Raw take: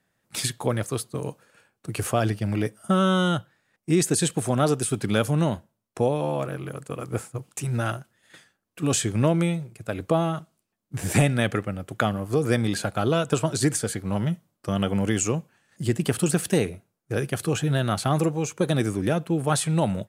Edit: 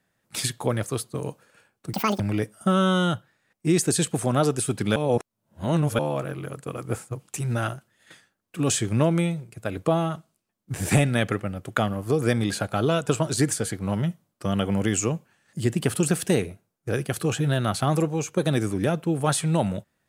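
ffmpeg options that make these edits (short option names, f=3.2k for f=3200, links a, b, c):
-filter_complex "[0:a]asplit=5[a][b][c][d][e];[a]atrim=end=1.934[f];[b]atrim=start=1.93:end=2.43,asetpts=PTS-STARTPTS,asetrate=82467,aresample=44100,atrim=end_sample=11791,asetpts=PTS-STARTPTS[g];[c]atrim=start=2.426:end=5.192[h];[d]atrim=start=5.188:end=6.222,asetpts=PTS-STARTPTS,areverse[i];[e]atrim=start=6.218[j];[f][g]acrossfade=d=0.004:c1=hsin:c2=hsin[k];[k][h]acrossfade=d=0.004:c1=hsin:c2=hsin[l];[l][i]acrossfade=d=0.004:c1=hsin:c2=hsin[m];[m][j]acrossfade=d=0.004:c1=hsin:c2=hsin"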